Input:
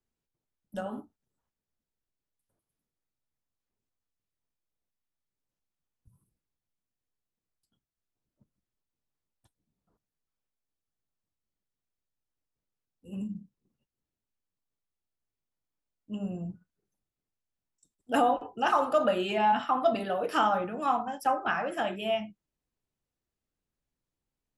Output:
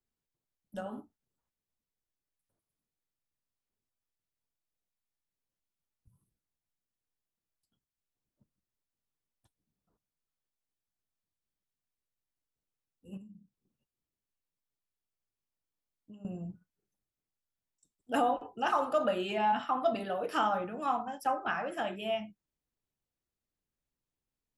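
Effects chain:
0:13.17–0:16.25: downward compressor 12 to 1, threshold −45 dBFS, peak gain reduction 14.5 dB
level −4 dB

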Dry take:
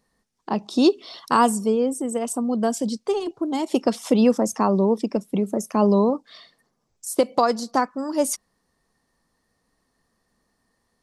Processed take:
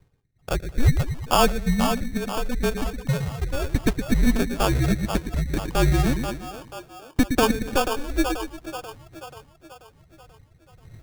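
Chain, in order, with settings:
wind on the microphone 82 Hz −35 dBFS
reverb reduction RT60 1.6 s
single-sideband voice off tune −260 Hz 150–3,000 Hz
on a send: echo with a time of its own for lows and highs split 420 Hz, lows 115 ms, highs 485 ms, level −6.5 dB
on the sum: sample-rate reduction 2,000 Hz, jitter 0%

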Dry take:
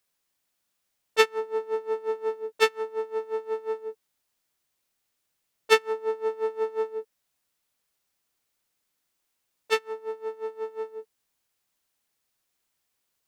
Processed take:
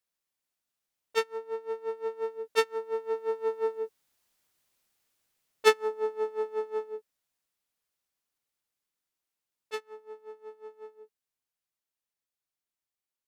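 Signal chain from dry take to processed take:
source passing by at 0:04.40, 6 m/s, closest 6.5 metres
dynamic equaliser 2,600 Hz, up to −4 dB, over −45 dBFS, Q 1.1
level +3 dB

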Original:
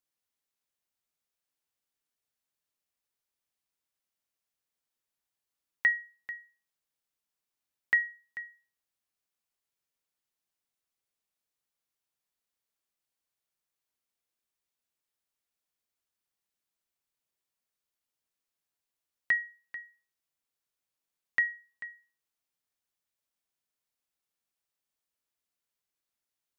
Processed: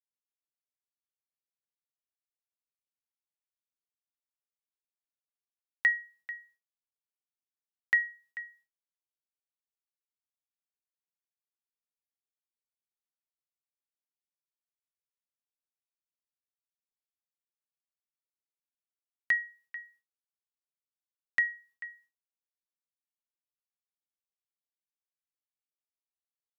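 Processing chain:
downward expander −59 dBFS

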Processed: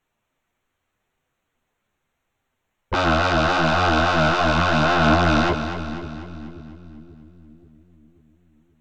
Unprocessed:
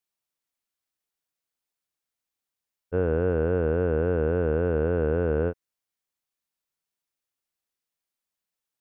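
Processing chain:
adaptive Wiener filter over 9 samples
low-shelf EQ 140 Hz +8.5 dB
in parallel at −2 dB: brickwall limiter −23 dBFS, peak gain reduction 9.5 dB
on the sum: sine wavefolder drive 15 dB, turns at −11 dBFS
multi-voice chorus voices 4, 0.74 Hz, delay 11 ms, depth 3.4 ms
echo with a time of its own for lows and highs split 340 Hz, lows 533 ms, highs 246 ms, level −9.5 dB
level −2 dB

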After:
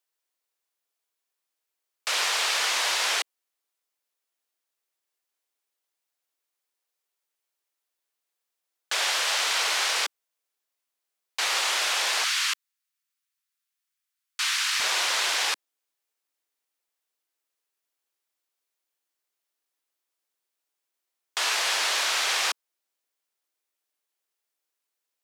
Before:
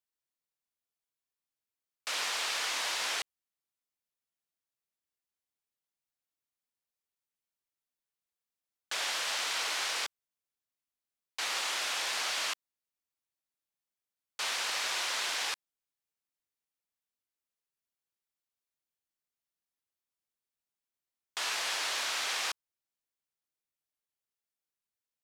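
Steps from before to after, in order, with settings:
high-pass filter 330 Hz 24 dB per octave, from 0:12.24 1,200 Hz, from 0:14.80 300 Hz
level +8 dB

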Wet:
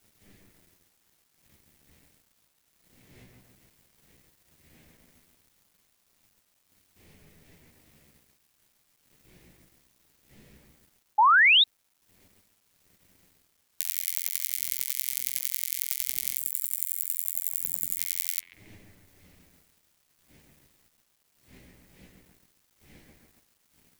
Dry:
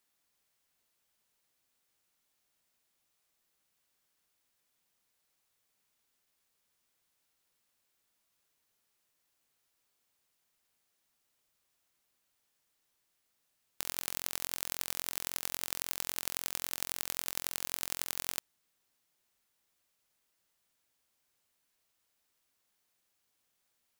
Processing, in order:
wind on the microphone 250 Hz −44 dBFS
high shelf with overshoot 1,600 Hz +7.5 dB, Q 3
on a send: bucket-brigade delay 138 ms, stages 2,048, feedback 48%, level −4 dB
on the sum: gain on a spectral selection 0:16.36–0:17.98, 310–7,000 Hz −13 dB
flanger 0.16 Hz, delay 9.6 ms, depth 6.8 ms, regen +19%
in parallel at −3 dB: downward compressor, threshold −43 dBFS, peak gain reduction 17 dB
on the sum: first-order pre-emphasis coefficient 0.9
bit reduction 10 bits
sound drawn into the spectrogram rise, 0:11.18–0:11.64, 810–3,900 Hz −18 dBFS

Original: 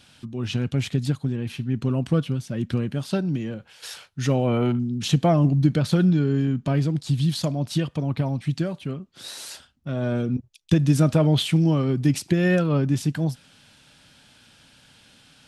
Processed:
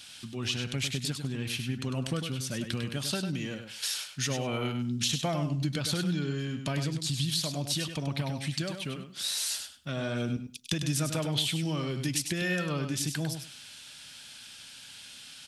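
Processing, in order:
tilt shelving filter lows −8.5 dB, about 1,500 Hz
downward compressor 3 to 1, threshold −31 dBFS, peak gain reduction 11 dB
on a send: repeating echo 100 ms, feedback 16%, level −7.5 dB
on the sum: level +1.5 dB

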